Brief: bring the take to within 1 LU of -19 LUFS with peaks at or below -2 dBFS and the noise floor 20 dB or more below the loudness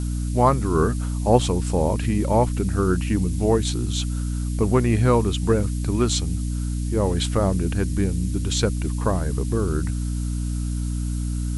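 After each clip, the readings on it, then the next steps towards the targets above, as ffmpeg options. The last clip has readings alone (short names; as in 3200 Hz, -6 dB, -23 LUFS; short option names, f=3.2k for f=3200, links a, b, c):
hum 60 Hz; harmonics up to 300 Hz; hum level -22 dBFS; noise floor -26 dBFS; noise floor target -43 dBFS; loudness -23.0 LUFS; peak -3.0 dBFS; loudness target -19.0 LUFS
-> -af "bandreject=f=60:t=h:w=6,bandreject=f=120:t=h:w=6,bandreject=f=180:t=h:w=6,bandreject=f=240:t=h:w=6,bandreject=f=300:t=h:w=6"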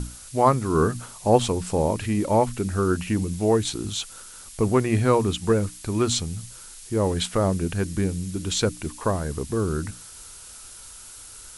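hum none; noise floor -43 dBFS; noise floor target -44 dBFS
-> -af "afftdn=nr=6:nf=-43"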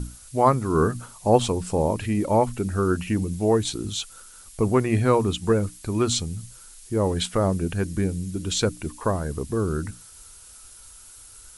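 noise floor -47 dBFS; loudness -24.0 LUFS; peak -4.0 dBFS; loudness target -19.0 LUFS
-> -af "volume=5dB,alimiter=limit=-2dB:level=0:latency=1"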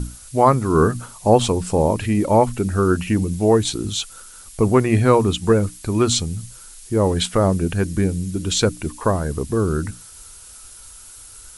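loudness -19.5 LUFS; peak -2.0 dBFS; noise floor -42 dBFS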